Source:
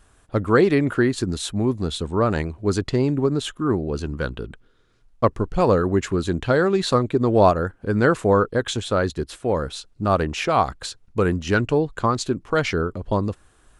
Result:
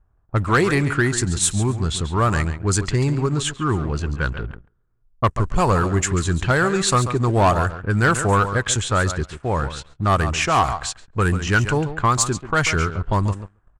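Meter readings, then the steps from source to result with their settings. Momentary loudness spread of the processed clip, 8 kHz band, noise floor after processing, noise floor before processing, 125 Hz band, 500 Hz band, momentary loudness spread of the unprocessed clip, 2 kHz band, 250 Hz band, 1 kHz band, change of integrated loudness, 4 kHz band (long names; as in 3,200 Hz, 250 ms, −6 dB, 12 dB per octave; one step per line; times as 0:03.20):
7 LU, +12.0 dB, −61 dBFS, −57 dBFS, +5.0 dB, −3.5 dB, 9 LU, +5.5 dB, −1.5 dB, +3.5 dB, +1.5 dB, +3.5 dB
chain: graphic EQ with 10 bands 250 Hz −9 dB, 500 Hz −10 dB, 4,000 Hz −7 dB, 8,000 Hz +11 dB
on a send: repeating echo 139 ms, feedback 16%, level −12 dB
on the sum: leveller curve on the samples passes 2
low-pass that shuts in the quiet parts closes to 680 Hz, open at −14 dBFS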